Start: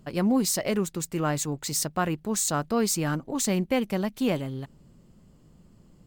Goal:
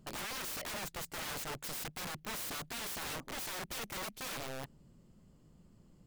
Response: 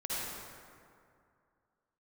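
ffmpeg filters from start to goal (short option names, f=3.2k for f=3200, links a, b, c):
-af "aeval=exprs='(mod(29.9*val(0)+1,2)-1)/29.9':c=same,volume=-6.5dB"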